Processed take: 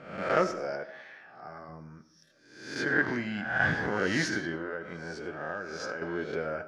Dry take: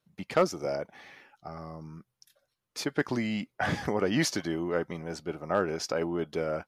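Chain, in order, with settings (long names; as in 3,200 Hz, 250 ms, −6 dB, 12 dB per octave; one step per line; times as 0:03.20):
peak hold with a rise ahead of every peak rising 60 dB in 0.74 s
high-frequency loss of the air 84 metres
0:00.51–0:01.69: high-pass filter 230 Hz 6 dB per octave
parametric band 1,600 Hz +13 dB 0.3 octaves
on a send at −12.5 dB: convolution reverb RT60 0.65 s, pre-delay 40 ms
0:04.55–0:06.02: on the sum: downward compressor 10 to 1, threshold −28 dBFS, peak gain reduction 11 dB
flanger 1.1 Hz, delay 7.4 ms, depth 4.3 ms, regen −62%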